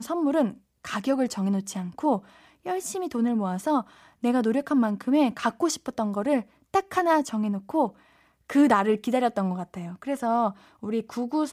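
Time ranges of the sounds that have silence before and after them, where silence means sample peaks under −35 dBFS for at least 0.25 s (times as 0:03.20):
0:00.85–0:02.19
0:02.66–0:03.82
0:04.24–0:06.42
0:06.74–0:07.89
0:08.50–0:10.51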